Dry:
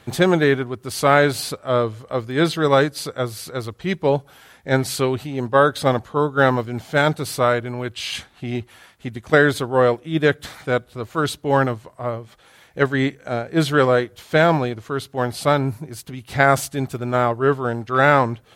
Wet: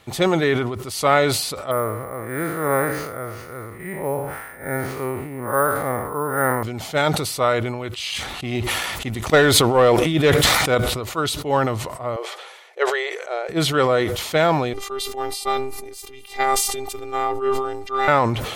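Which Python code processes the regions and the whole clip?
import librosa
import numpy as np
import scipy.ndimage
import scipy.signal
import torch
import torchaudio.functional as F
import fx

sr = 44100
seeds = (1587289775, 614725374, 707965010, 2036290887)

y = fx.chain(x, sr, fx.spec_blur(span_ms=158.0),
    fx.high_shelf_res(hz=2500.0, db=-11.0, q=3.0),
    fx.resample_bad(factor=4, down='none', up='hold'), at=(1.71, 6.63))
y = fx.chain(y, sr, fx.leveller(passes=1),
    fx.sustainer(db_per_s=24.0), at=(8.16, 10.75))
y = fx.chain(y, sr, fx.brickwall_bandpass(low_hz=350.0, high_hz=13000.0),
    fx.high_shelf(hz=7900.0, db=-11.0), at=(12.16, 13.49))
y = fx.chain(y, sr, fx.highpass(hz=180.0, slope=6),
    fx.robotise(hz=399.0),
    fx.sustainer(db_per_s=60.0), at=(14.73, 18.08))
y = fx.peak_eq(y, sr, hz=170.0, db=-5.5, octaves=2.7)
y = fx.notch(y, sr, hz=1600.0, q=7.0)
y = fx.sustainer(y, sr, db_per_s=44.0)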